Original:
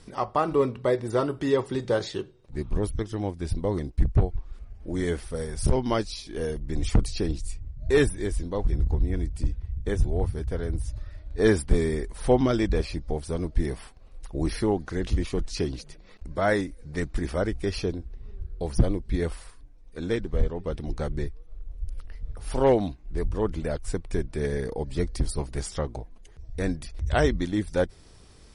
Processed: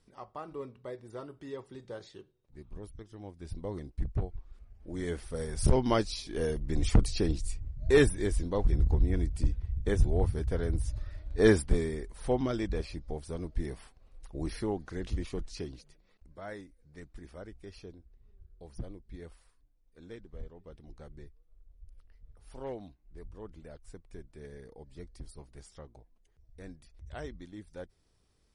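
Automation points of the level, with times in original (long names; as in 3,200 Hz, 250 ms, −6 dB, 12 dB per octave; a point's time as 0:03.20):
0:03.09 −18 dB
0:03.61 −11 dB
0:04.74 −11 dB
0:05.68 −1.5 dB
0:11.51 −1.5 dB
0:11.93 −8.5 dB
0:15.35 −8.5 dB
0:16.36 −19.5 dB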